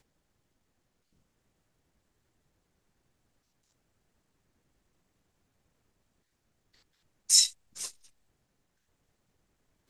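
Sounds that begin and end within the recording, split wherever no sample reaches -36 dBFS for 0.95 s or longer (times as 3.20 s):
7.30–7.89 s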